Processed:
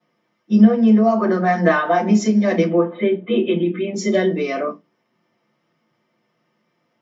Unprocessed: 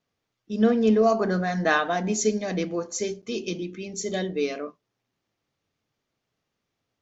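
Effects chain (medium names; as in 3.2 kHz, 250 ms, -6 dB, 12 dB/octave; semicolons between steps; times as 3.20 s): 2.67–3.94 s: Chebyshev low-pass 3.8 kHz, order 10; compression 6:1, threshold -27 dBFS, peak gain reduction 12.5 dB; reverberation RT60 0.20 s, pre-delay 3 ms, DRR -11.5 dB; trim -6 dB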